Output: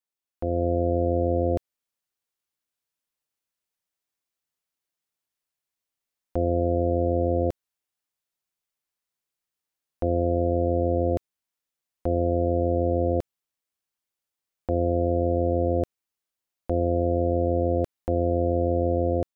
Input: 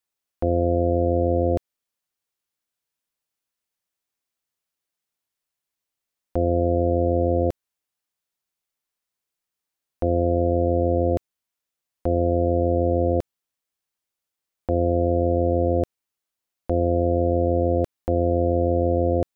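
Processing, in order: level rider gain up to 6 dB; trim -8.5 dB

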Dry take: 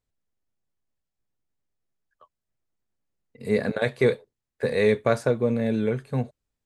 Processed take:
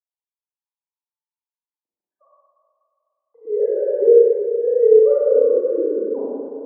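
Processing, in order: formants replaced by sine waves; elliptic low-pass 950 Hz, stop band 80 dB; echo that smears into a reverb 461 ms, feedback 55%, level -16 dB; Schroeder reverb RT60 2.1 s, combs from 32 ms, DRR -8 dB

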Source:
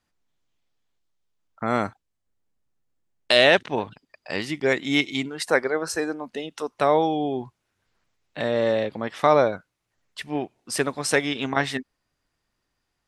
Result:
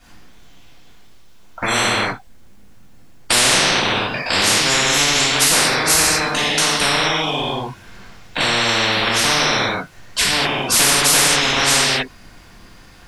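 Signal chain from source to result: reverberation, pre-delay 3 ms, DRR -12.5 dB; spectrum-flattening compressor 10:1; trim -11 dB

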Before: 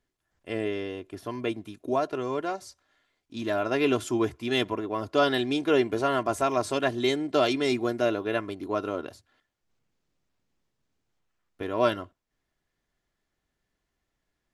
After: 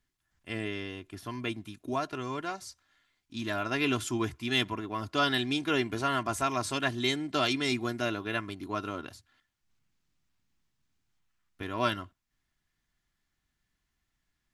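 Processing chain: peaking EQ 500 Hz -13 dB 1.3 oct; trim +1.5 dB

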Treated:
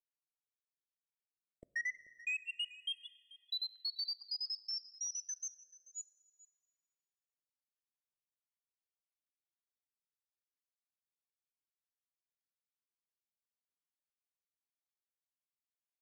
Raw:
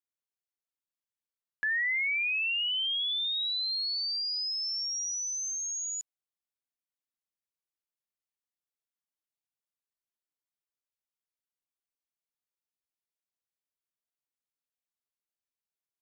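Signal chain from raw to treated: random holes in the spectrogram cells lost 70%; treble shelf 5.7 kHz +9.5 dB; compression 3:1, threshold -36 dBFS, peak gain reduction 6.5 dB; waveshaping leveller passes 2; distance through air 82 m; delay 436 ms -19 dB; plate-style reverb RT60 3 s, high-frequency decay 0.55×, DRR 16.5 dB; 3.40–5.59 s: step-sequenced high-pass 8.4 Hz 790–1800 Hz; trim -3 dB

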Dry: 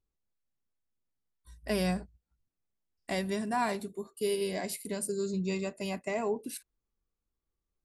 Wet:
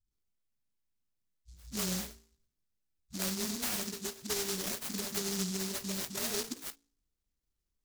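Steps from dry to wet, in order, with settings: de-hum 55.91 Hz, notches 9; compression 4:1, threshold -34 dBFS, peak gain reduction 8.5 dB; phase dispersion highs, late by 129 ms, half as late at 330 Hz; delay time shaken by noise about 5.5 kHz, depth 0.42 ms; trim +1.5 dB

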